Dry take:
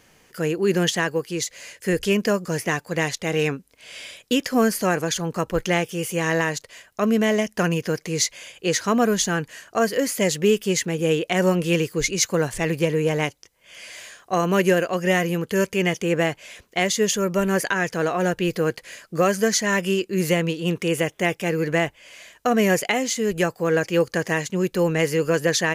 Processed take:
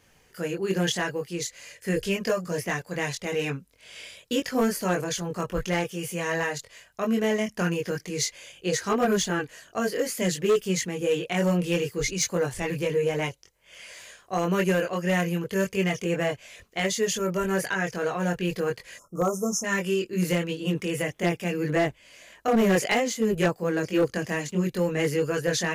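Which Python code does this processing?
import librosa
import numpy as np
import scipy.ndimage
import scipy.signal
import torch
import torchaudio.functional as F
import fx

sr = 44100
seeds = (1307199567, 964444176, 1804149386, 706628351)

y = fx.spec_erase(x, sr, start_s=18.97, length_s=0.67, low_hz=1400.0, high_hz=5200.0)
y = fx.chorus_voices(y, sr, voices=6, hz=0.91, base_ms=22, depth_ms=1.3, mix_pct=45)
y = np.clip(10.0 ** (14.5 / 20.0) * y, -1.0, 1.0) / 10.0 ** (14.5 / 20.0)
y = y * librosa.db_to_amplitude(-2.0)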